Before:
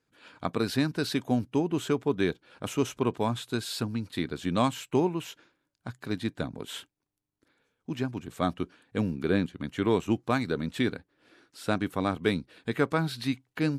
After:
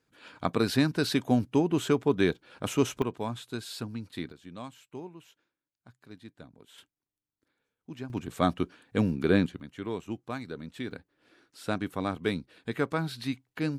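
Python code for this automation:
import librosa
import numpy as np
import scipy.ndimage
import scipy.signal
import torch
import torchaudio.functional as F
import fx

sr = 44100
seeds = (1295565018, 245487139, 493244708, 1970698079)

y = fx.gain(x, sr, db=fx.steps((0.0, 2.0), (3.02, -5.5), (4.32, -16.5), (6.78, -8.5), (8.1, 2.5), (9.6, -9.5), (10.91, -3.0)))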